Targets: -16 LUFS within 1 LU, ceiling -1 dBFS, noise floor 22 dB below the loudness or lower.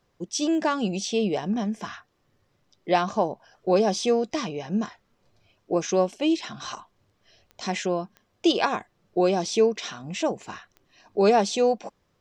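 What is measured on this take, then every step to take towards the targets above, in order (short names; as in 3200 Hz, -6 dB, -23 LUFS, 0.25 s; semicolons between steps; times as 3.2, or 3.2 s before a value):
clicks 4; loudness -25.5 LUFS; peak -9.0 dBFS; loudness target -16.0 LUFS
-> de-click; gain +9.5 dB; limiter -1 dBFS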